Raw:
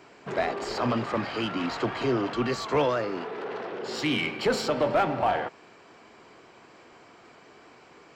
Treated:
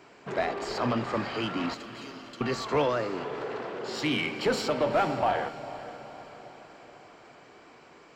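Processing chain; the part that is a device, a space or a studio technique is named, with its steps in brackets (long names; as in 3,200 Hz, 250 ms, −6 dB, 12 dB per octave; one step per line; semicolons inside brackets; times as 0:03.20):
0:01.74–0:02.41: first-order pre-emphasis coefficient 0.97
feedback delay with all-pass diffusion 476 ms, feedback 53%, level −15 dB
saturated reverb return (on a send at −13 dB: convolution reverb RT60 2.4 s, pre-delay 36 ms + soft clipping −28.5 dBFS, distortion −8 dB)
on the sum: level −1.5 dB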